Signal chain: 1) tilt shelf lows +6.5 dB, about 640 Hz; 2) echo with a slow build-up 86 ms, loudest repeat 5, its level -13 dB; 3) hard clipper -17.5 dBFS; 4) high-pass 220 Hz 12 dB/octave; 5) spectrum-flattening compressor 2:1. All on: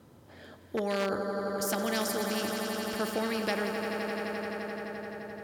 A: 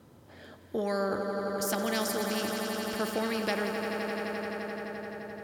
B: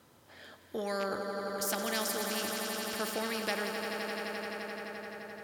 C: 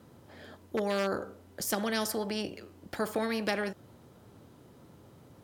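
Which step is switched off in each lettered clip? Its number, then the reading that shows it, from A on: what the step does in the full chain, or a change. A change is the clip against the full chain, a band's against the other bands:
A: 3, distortion -30 dB; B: 1, 125 Hz band -4.5 dB; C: 2, momentary loudness spread change +10 LU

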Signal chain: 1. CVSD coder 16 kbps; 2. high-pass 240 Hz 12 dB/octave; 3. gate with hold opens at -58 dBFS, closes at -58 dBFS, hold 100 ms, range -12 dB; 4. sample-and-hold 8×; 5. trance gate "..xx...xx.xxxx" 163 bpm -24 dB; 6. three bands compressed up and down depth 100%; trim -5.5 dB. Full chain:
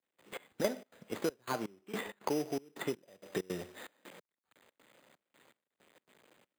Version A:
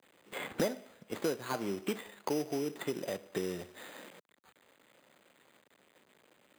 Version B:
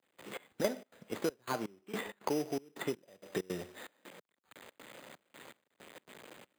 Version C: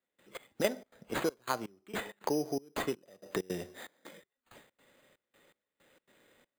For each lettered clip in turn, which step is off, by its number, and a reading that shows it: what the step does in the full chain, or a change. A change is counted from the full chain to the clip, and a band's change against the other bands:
5, 1 kHz band -2.0 dB; 3, momentary loudness spread change +5 LU; 1, momentary loudness spread change +2 LU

